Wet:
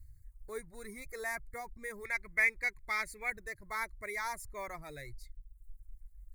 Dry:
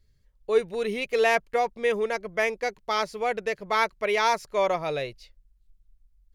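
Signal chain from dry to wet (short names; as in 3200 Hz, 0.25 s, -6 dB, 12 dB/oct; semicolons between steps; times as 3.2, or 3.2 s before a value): G.711 law mismatch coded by mu; bell 2500 Hz -8 dB 1.1 oct, from 2.05 s +10 dB, from 3.3 s -4 dB; Chebyshev band-stop 1000–8000 Hz, order 2; reverb removal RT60 0.81 s; EQ curve 100 Hz 0 dB, 180 Hz -22 dB, 310 Hz -16 dB, 470 Hz -27 dB, 770 Hz -24 dB, 1400 Hz -11 dB, 2100 Hz +14 dB, 3800 Hz +8 dB, 5500 Hz -10 dB, 9200 Hz -5 dB; gain +5 dB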